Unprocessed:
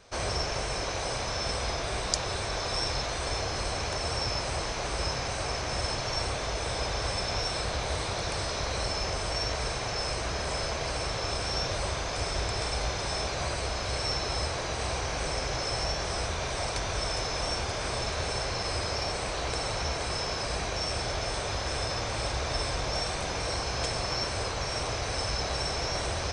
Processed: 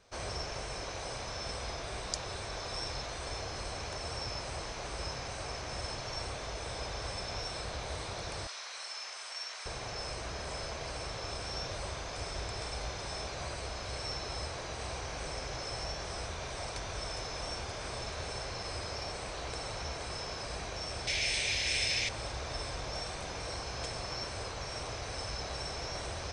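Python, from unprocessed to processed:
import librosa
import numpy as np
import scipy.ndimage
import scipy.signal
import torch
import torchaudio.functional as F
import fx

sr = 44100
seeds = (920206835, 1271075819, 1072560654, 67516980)

y = fx.highpass(x, sr, hz=1200.0, slope=12, at=(8.47, 9.66))
y = fx.high_shelf_res(y, sr, hz=1700.0, db=10.0, q=3.0, at=(21.07, 22.09))
y = y * 10.0 ** (-8.0 / 20.0)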